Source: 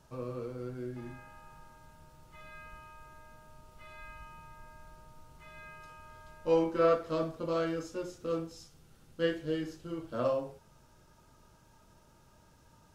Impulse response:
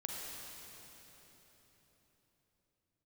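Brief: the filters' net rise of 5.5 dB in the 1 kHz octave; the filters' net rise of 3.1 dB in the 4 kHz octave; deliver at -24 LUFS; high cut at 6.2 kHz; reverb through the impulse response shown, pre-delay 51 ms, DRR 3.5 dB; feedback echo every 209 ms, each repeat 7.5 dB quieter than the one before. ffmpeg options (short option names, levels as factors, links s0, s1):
-filter_complex "[0:a]lowpass=6200,equalizer=f=1000:t=o:g=7,equalizer=f=4000:t=o:g=4.5,aecho=1:1:209|418|627|836|1045:0.422|0.177|0.0744|0.0312|0.0131,asplit=2[s0][s1];[1:a]atrim=start_sample=2205,adelay=51[s2];[s1][s2]afir=irnorm=-1:irlink=0,volume=0.631[s3];[s0][s3]amix=inputs=2:normalize=0,volume=2.11"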